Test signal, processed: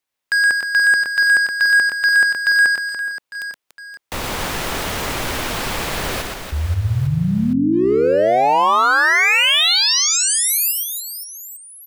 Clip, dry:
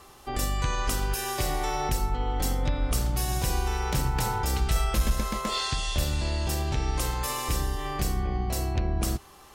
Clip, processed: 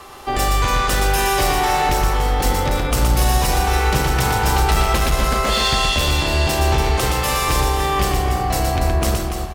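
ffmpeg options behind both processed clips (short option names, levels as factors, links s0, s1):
-filter_complex "[0:a]acrossover=split=360|4100[s0][s1][s2];[s1]acontrast=36[s3];[s0][s3][s2]amix=inputs=3:normalize=0,volume=12.6,asoftclip=hard,volume=0.0794,aecho=1:1:120|288|523.2|852.5|1313:0.631|0.398|0.251|0.158|0.1,volume=2.37"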